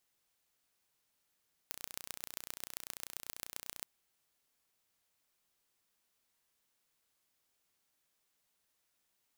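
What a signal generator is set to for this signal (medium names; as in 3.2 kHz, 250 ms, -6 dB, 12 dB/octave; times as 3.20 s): pulse train 30.2 per s, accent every 4, -12 dBFS 2.13 s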